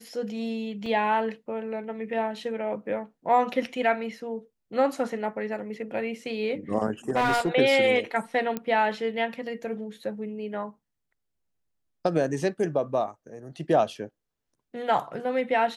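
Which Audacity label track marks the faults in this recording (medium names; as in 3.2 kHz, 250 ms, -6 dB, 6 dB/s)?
0.860000	0.860000	dropout 3.6 ms
7.090000	7.490000	clipped -19.5 dBFS
8.570000	8.570000	pop -16 dBFS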